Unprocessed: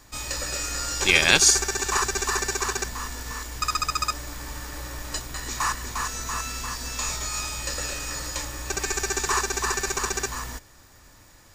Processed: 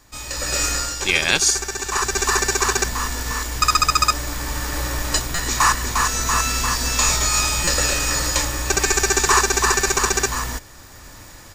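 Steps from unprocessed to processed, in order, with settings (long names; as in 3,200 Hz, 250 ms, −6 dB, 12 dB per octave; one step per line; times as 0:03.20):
automatic gain control gain up to 12.5 dB
buffer that repeats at 0:05.35/0:07.64, samples 256, times 5
level −1 dB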